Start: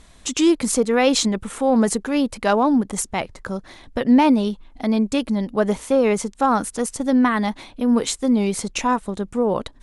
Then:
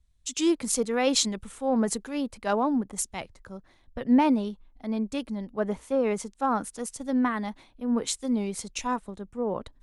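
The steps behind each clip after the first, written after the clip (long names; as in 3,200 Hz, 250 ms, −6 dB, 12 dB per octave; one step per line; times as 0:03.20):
multiband upward and downward expander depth 70%
level −8.5 dB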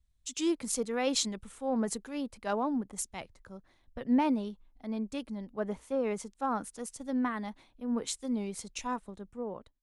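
fade-out on the ending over 0.51 s
level −6 dB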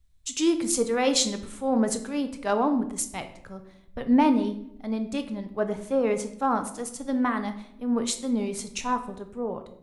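rectangular room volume 180 cubic metres, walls mixed, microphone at 0.43 metres
level +6.5 dB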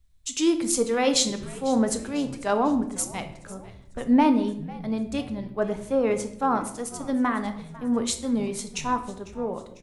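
echo with shifted repeats 498 ms, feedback 50%, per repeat −89 Hz, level −19 dB
level +1 dB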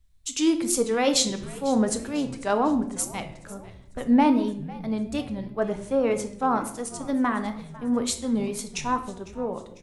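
tape wow and flutter 58 cents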